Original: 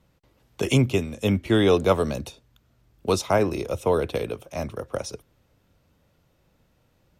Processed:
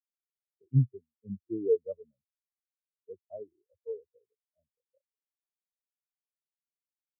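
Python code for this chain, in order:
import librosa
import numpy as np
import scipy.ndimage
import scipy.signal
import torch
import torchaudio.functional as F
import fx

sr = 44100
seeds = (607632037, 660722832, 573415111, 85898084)

y = fx.air_absorb(x, sr, metres=150.0)
y = fx.spectral_expand(y, sr, expansion=4.0)
y = F.gain(torch.from_numpy(y), -8.0).numpy()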